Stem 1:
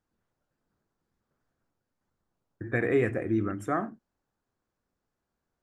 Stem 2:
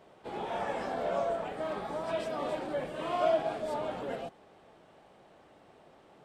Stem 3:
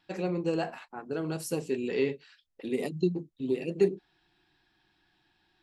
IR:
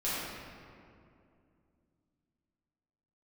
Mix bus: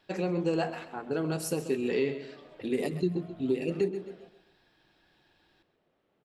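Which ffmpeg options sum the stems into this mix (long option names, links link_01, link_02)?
-filter_complex "[0:a]asoftclip=type=tanh:threshold=-31dB,volume=-9dB[link_01];[1:a]lowpass=5000,volume=-14dB,asplit=2[link_02][link_03];[link_03]volume=-16dB[link_04];[2:a]volume=2.5dB,asplit=2[link_05][link_06];[link_06]volume=-14dB[link_07];[link_01][link_02]amix=inputs=2:normalize=0,equalizer=frequency=840:width_type=o:width=0.87:gain=-8,acompressor=threshold=-50dB:ratio=6,volume=0dB[link_08];[link_04][link_07]amix=inputs=2:normalize=0,aecho=0:1:131|262|393|524|655:1|0.34|0.116|0.0393|0.0134[link_09];[link_05][link_08][link_09]amix=inputs=3:normalize=0,alimiter=limit=-18dB:level=0:latency=1:release=191"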